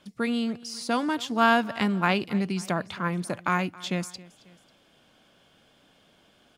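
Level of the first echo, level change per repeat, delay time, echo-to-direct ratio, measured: -21.0 dB, -5.5 dB, 271 ms, -20.0 dB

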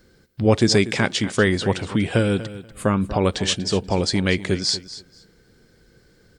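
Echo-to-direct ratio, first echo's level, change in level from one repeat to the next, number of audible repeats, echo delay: -15.0 dB, -15.0 dB, -15.0 dB, 2, 241 ms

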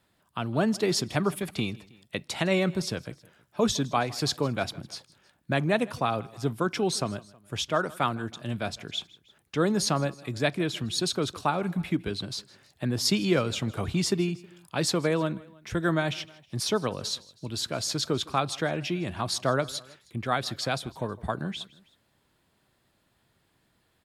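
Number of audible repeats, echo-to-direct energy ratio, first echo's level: 2, -20.5 dB, -22.0 dB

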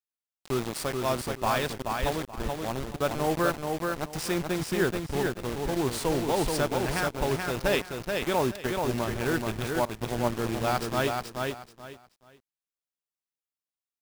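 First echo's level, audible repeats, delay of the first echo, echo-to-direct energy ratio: -4.0 dB, 3, 430 ms, -4.0 dB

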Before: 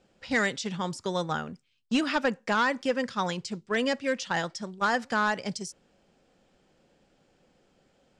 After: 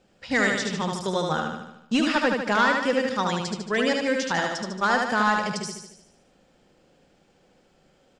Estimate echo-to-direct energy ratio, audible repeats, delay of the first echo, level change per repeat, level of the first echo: -2.0 dB, 7, 75 ms, -5.0 dB, -3.5 dB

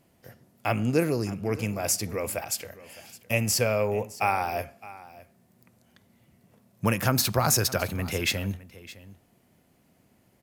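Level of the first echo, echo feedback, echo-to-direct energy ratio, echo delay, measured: -18.5 dB, no regular repeats, -18.5 dB, 613 ms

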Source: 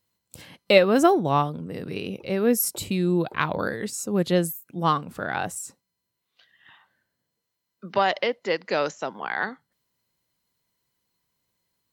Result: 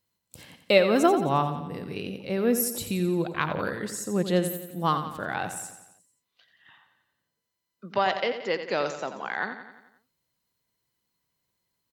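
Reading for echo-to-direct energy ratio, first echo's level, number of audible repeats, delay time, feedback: -8.5 dB, -10.0 dB, 5, 88 ms, 55%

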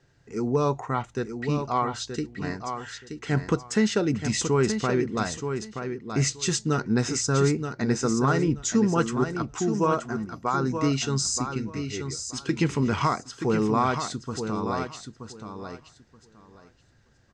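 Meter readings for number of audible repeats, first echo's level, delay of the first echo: 2, -7.5 dB, 926 ms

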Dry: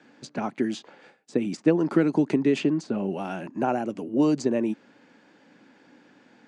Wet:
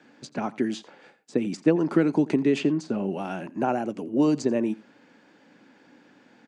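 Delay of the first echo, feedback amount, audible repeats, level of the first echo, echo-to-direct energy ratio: 86 ms, no regular repeats, 1, -21.5 dB, -21.5 dB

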